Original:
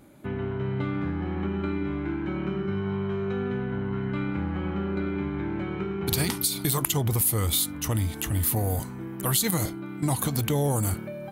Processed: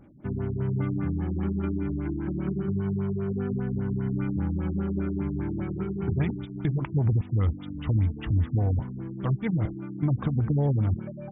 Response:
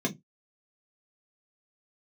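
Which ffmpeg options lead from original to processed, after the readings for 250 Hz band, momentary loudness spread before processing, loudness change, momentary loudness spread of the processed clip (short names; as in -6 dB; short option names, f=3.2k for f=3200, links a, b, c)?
+0.5 dB, 7 LU, -1.0 dB, 6 LU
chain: -af "bass=f=250:g=7,treble=f=4k:g=-7,afftfilt=real='re*lt(b*sr/1024,320*pow(3800/320,0.5+0.5*sin(2*PI*5*pts/sr)))':imag='im*lt(b*sr/1024,320*pow(3800/320,0.5+0.5*sin(2*PI*5*pts/sr)))':win_size=1024:overlap=0.75,volume=-3.5dB"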